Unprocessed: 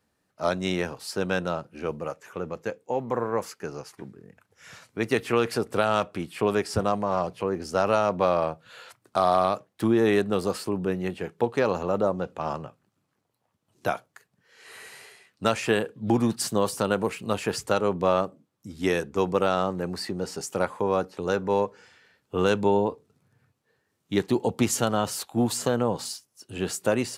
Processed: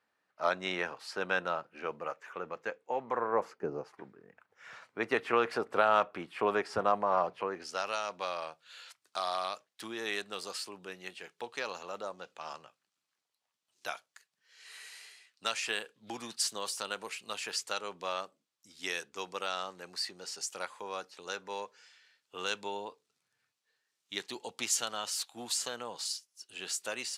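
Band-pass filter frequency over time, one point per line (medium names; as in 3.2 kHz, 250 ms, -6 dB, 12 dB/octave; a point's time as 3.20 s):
band-pass filter, Q 0.75
3.15 s 1.6 kHz
3.71 s 360 Hz
4.04 s 1.2 kHz
7.36 s 1.2 kHz
7.87 s 4.8 kHz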